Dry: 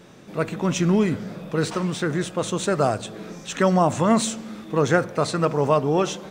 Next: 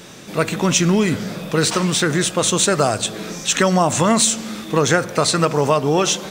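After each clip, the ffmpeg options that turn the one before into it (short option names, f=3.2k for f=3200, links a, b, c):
-af "highshelf=f=2.3k:g=11.5,acompressor=threshold=-19dB:ratio=3,volume=6dB"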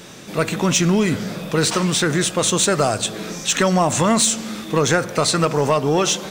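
-af "asoftclip=type=tanh:threshold=-6.5dB"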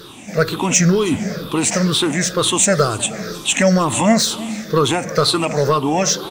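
-filter_complex "[0:a]afftfilt=real='re*pow(10,15/40*sin(2*PI*(0.6*log(max(b,1)*sr/1024/100)/log(2)-(-2.1)*(pts-256)/sr)))':imag='im*pow(10,15/40*sin(2*PI*(0.6*log(max(b,1)*sr/1024/100)/log(2)-(-2.1)*(pts-256)/sr)))':win_size=1024:overlap=0.75,asplit=2[a][b];[b]adelay=314.9,volume=-19dB,highshelf=f=4k:g=-7.08[c];[a][c]amix=inputs=2:normalize=0,volume=-1dB"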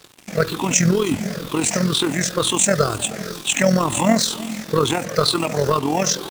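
-af "acrusher=bits=4:mix=0:aa=0.5,tremolo=f=42:d=0.621"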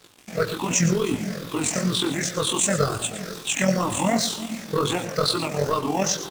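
-af "flanger=delay=16:depth=6:speed=2.6,aecho=1:1:112:0.224,volume=-1.5dB"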